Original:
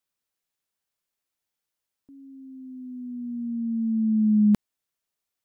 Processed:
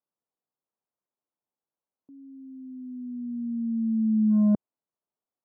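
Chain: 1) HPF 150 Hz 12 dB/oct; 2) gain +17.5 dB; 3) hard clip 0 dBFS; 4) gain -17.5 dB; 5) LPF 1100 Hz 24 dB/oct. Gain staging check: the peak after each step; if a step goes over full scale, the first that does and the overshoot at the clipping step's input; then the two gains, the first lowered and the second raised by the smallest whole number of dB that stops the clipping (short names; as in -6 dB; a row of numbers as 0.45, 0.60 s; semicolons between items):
-13.5, +4.0, 0.0, -17.5, -16.5 dBFS; step 2, 4.0 dB; step 2 +13.5 dB, step 4 -13.5 dB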